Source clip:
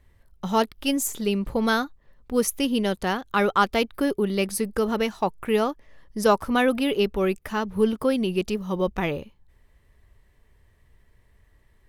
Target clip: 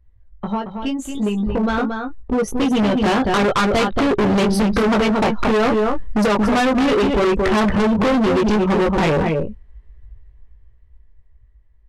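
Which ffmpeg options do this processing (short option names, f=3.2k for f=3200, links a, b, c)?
-filter_complex "[0:a]acompressor=threshold=-27dB:ratio=16,asettb=1/sr,asplit=3[a][b][c];[a]atrim=end=2.714[d];[b]atrim=start=2.71:end=4.93,asetpts=PTS-STARTPTS,afade=t=in:d=0.004:c=qsin,afade=t=out:st=2.216:d=0.004:c=qsin,equalizer=f=125:t=o:w=1:g=7,equalizer=f=4k:t=o:w=1:g=6,equalizer=f=8k:t=o:w=1:g=-6[e];[c]atrim=start=4.926[f];[d][e]acrossfade=d=0.004:c1=hsin:c2=qsin[g];[g][f]acrossfade=d=0.004:c1=qsin:c2=hsin,afftdn=nr=20:nf=-41,asoftclip=type=tanh:threshold=-25.5dB,aemphasis=mode=reproduction:type=75fm,asplit=2[h][i];[i]adelay=19,volume=-4dB[j];[h][j]amix=inputs=2:normalize=0,asplit=2[k][l];[l]adelay=227.4,volume=-7dB,highshelf=f=4k:g=-5.12[m];[k][m]amix=inputs=2:normalize=0,dynaudnorm=f=260:g=21:m=16dB,asoftclip=type=hard:threshold=-22dB,lowpass=11k,volume=7.5dB"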